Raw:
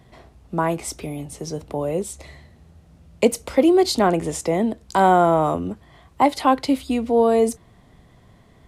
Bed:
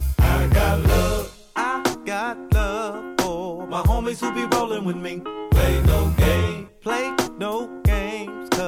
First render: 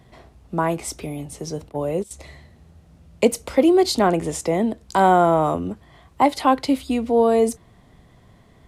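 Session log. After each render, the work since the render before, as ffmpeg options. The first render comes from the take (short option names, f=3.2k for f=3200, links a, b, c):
-filter_complex "[0:a]asettb=1/sr,asplit=3[a][b][c];[a]atrim=end=1.694[d];[b]atrim=start=1.69:end=2.11,asetpts=PTS-STARTPTS,afade=t=in:d=0.004:c=qsin,afade=t=out:st=0.416:d=0.004:c=qsin,agate=range=-13dB:threshold=-27dB:ratio=16:release=100:detection=peak[e];[c]atrim=start=2.106[f];[d][e]acrossfade=d=0.004:c1=hsin:c2=qsin[g];[g][f]acrossfade=d=0.004:c1=qsin:c2=hsin"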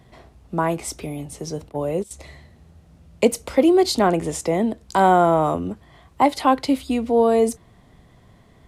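-af anull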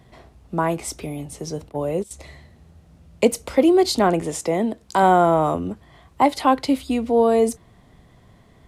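-filter_complex "[0:a]asettb=1/sr,asplit=3[a][b][c];[a]atrim=end=4.224[d];[b]atrim=start=4.22:end=5.03,asetpts=PTS-STARTPTS,afade=t=in:d=0.004:c=qsin,afade=t=out:st=0.806:d=0.004:c=qsin,lowshelf=f=83:g=-11[e];[c]atrim=start=5.026[f];[d][e]acrossfade=d=0.004:c1=hsin:c2=qsin[g];[g][f]acrossfade=d=0.004:c1=qsin:c2=hsin"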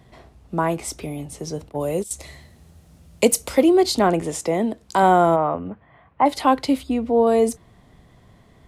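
-filter_complex "[0:a]asettb=1/sr,asplit=3[a][b][c];[a]atrim=end=1.804[d];[b]atrim=start=1.8:end=3.62,asetpts=PTS-STARTPTS,afade=t=in:d=0.004:c=qsin,afade=t=out:st=1.816:d=0.004:c=qsin,highshelf=f=4.8k:g=11.5[e];[c]atrim=start=3.616[f];[d][e]acrossfade=d=0.004:c1=hsin:c2=qsin[g];[g][f]acrossfade=d=0.004:c1=qsin:c2=hsin,asplit=3[h][i][j];[h]afade=t=out:st=5.35:d=0.02[k];[i]highpass=110,equalizer=f=160:t=q:w=4:g=-4,equalizer=f=240:t=q:w=4:g=-4,equalizer=f=360:t=q:w=4:g=-9,lowpass=f=2.4k:w=0.5412,lowpass=f=2.4k:w=1.3066,afade=t=in:st=5.35:d=0.02,afade=t=out:st=6.25:d=0.02[l];[j]afade=t=in:st=6.25:d=0.02[m];[k][l][m]amix=inputs=3:normalize=0,asettb=1/sr,asplit=3[n][o][p];[n]atrim=end=6.834[q];[o]atrim=start=6.83:end=7.27,asetpts=PTS-STARTPTS,afade=t=in:d=0.004:c=qsin,afade=t=out:st=0.436:d=0.004:c=qsin,highshelf=f=2.8k:g=-10.5[r];[p]atrim=start=7.266[s];[q][r]acrossfade=d=0.004:c1=hsin:c2=qsin[t];[t][s]acrossfade=d=0.004:c1=qsin:c2=hsin"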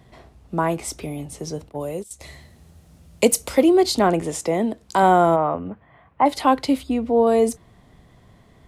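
-filter_complex "[0:a]asplit=2[a][b];[a]atrim=end=2.21,asetpts=PTS-STARTPTS,afade=t=out:st=1.47:d=0.74:silence=0.281838[c];[b]atrim=start=2.21,asetpts=PTS-STARTPTS,afade=t=in:d=0.004:c=hsin:silence=0.281838[d];[c][d]concat=n=2:v=0:a=1"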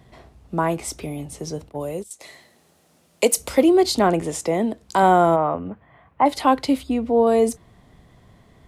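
-filter_complex "[0:a]asettb=1/sr,asplit=3[a][b][c];[a]atrim=end=2.104[d];[b]atrim=start=2.1:end=3.37,asetpts=PTS-STARTPTS,afade=t=in:d=0.004:c=qsin,afade=t=out:st=1.266:d=0.004:c=qsin,highpass=320[e];[c]atrim=start=3.366[f];[d][e]acrossfade=d=0.004:c1=hsin:c2=qsin[g];[g][f]acrossfade=d=0.004:c1=qsin:c2=hsin"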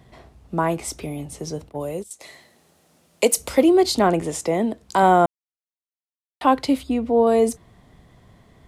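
-filter_complex "[0:a]asplit=3[a][b][c];[a]atrim=end=5.26,asetpts=PTS-STARTPTS,afade=t=out:st=5.256:d=0.004:c=hsin[d];[b]atrim=start=5.26:end=6.41,asetpts=PTS-STARTPTS,volume=0[e];[c]atrim=start=6.41,asetpts=PTS-STARTPTS,afade=t=in:d=0.004:c=hsin[f];[d][e][f]concat=n=3:v=0:a=1"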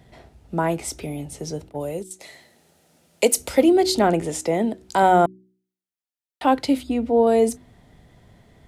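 -af "bandreject=f=1.1k:w=5.9,bandreject=f=62.43:t=h:w=4,bandreject=f=124.86:t=h:w=4,bandreject=f=187.29:t=h:w=4,bandreject=f=249.72:t=h:w=4,bandreject=f=312.15:t=h:w=4,bandreject=f=374.58:t=h:w=4"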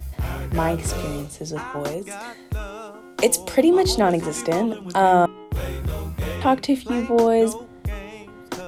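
-filter_complex "[1:a]volume=-10dB[a];[0:a][a]amix=inputs=2:normalize=0"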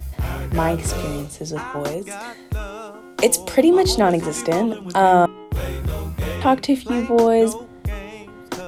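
-af "volume=2dB"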